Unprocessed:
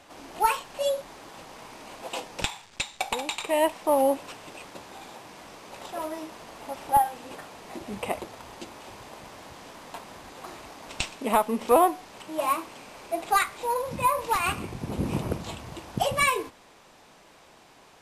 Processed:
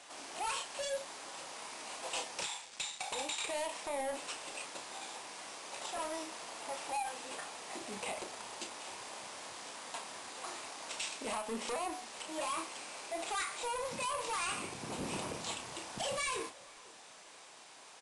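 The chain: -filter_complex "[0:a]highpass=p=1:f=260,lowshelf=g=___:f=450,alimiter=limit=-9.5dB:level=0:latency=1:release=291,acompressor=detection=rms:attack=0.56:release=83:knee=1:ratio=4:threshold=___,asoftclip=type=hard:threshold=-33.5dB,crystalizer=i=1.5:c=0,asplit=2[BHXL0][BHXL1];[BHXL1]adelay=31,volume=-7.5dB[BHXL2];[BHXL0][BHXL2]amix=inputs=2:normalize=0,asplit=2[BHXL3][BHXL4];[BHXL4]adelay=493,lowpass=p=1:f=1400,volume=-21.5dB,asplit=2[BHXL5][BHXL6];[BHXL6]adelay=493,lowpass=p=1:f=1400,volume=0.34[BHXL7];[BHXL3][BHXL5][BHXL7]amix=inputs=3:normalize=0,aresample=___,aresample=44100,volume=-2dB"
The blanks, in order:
-7.5, -27dB, 22050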